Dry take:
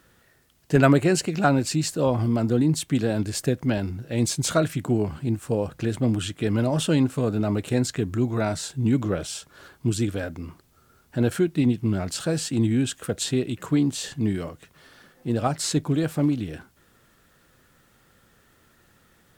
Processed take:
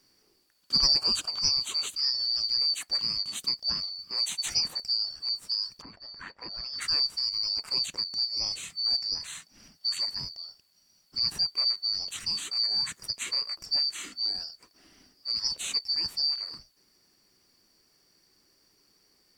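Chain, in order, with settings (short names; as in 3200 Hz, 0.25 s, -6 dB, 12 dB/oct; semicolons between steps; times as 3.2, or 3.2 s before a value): four-band scrambler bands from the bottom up 2341; 5.81–6.8 LPF 1400 Hz -> 3400 Hz 12 dB/oct; gain -6.5 dB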